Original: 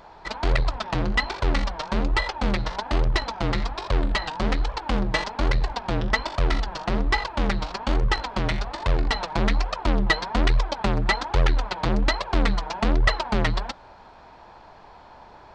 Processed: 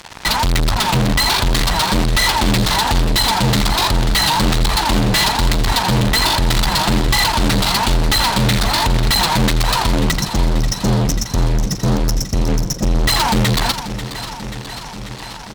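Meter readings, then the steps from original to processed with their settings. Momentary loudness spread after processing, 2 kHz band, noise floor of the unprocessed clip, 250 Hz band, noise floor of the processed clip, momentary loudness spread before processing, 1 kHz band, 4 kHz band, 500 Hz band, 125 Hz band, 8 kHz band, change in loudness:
6 LU, +7.0 dB, -48 dBFS, +9.5 dB, -30 dBFS, 5 LU, +9.5 dB, +15.0 dB, +6.0 dB, +10.0 dB, no reading, +9.5 dB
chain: spectral selection erased 10.11–12.94 s, 220–5200 Hz; ten-band graphic EQ 125 Hz +8 dB, 500 Hz -8 dB, 4 kHz +10 dB; delay 85 ms -21 dB; fuzz box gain 39 dB, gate -43 dBFS; modulated delay 538 ms, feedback 73%, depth 62 cents, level -12 dB

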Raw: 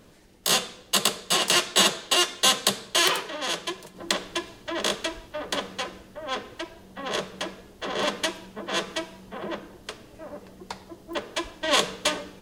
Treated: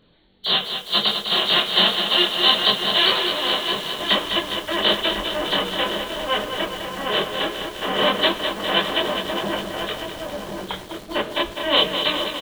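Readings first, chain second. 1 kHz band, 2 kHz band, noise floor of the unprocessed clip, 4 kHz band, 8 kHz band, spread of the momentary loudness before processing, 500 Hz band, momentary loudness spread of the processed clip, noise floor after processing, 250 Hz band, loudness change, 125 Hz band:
+5.5 dB, +5.0 dB, -51 dBFS, +8.0 dB, -12.5 dB, 19 LU, +6.5 dB, 11 LU, -38 dBFS, +6.0 dB, +5.0 dB, +5.5 dB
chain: knee-point frequency compression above 2.9 kHz 4:1; level rider gain up to 10 dB; chorus voices 2, 0.22 Hz, delay 24 ms, depth 4.5 ms; echo from a far wall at 180 m, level -6 dB; in parallel at -9 dB: word length cut 6-bit, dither none; on the sum: bit-crushed delay 204 ms, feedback 80%, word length 6-bit, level -7.5 dB; trim -2 dB

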